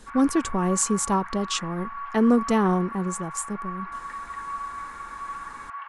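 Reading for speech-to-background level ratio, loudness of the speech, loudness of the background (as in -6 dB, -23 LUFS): 11.0 dB, -24.5 LUFS, -35.5 LUFS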